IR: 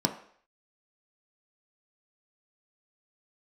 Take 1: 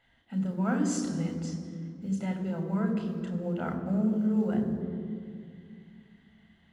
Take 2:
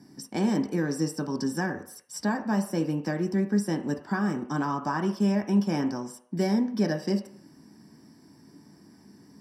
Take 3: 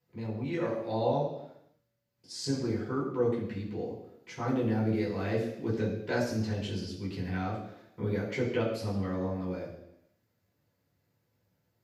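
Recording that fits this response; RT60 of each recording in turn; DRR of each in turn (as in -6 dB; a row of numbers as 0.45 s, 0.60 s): 2; 2.3 s, 0.60 s, 0.85 s; 3.5 dB, 3.5 dB, -7.5 dB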